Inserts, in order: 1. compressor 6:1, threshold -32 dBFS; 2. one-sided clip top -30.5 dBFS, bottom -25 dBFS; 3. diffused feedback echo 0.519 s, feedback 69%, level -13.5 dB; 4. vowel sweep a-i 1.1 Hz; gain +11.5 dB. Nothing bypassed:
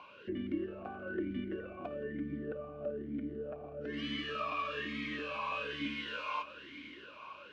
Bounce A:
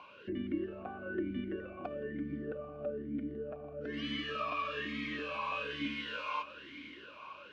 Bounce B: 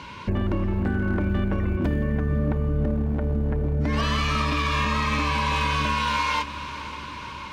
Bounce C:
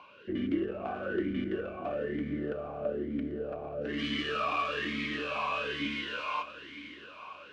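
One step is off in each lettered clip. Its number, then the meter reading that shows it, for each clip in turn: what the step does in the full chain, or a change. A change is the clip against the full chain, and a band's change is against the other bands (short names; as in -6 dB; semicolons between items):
2, distortion -16 dB; 4, 125 Hz band +13.0 dB; 1, momentary loudness spread change +1 LU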